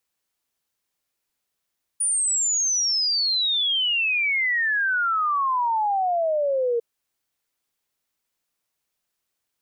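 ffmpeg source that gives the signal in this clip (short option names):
-f lavfi -i "aevalsrc='0.106*clip(min(t,4.8-t)/0.01,0,1)*sin(2*PI*9600*4.8/log(460/9600)*(exp(log(460/9600)*t/4.8)-1))':d=4.8:s=44100"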